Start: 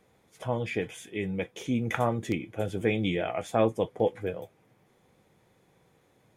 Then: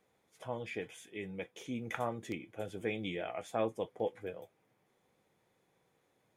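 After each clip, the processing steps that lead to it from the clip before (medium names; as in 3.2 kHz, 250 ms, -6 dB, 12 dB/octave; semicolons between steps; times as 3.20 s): bass shelf 190 Hz -8.5 dB; trim -8 dB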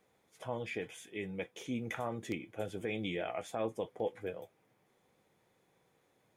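peak limiter -27 dBFS, peak gain reduction 7 dB; trim +2 dB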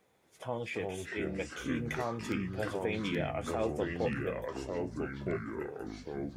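ever faster or slower copies 224 ms, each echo -4 st, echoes 3; trim +2 dB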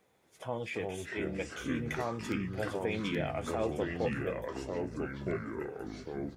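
delay 670 ms -18.5 dB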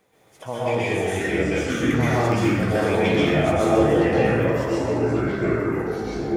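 plate-style reverb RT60 1.4 s, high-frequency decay 0.65×, pre-delay 110 ms, DRR -8 dB; trim +5.5 dB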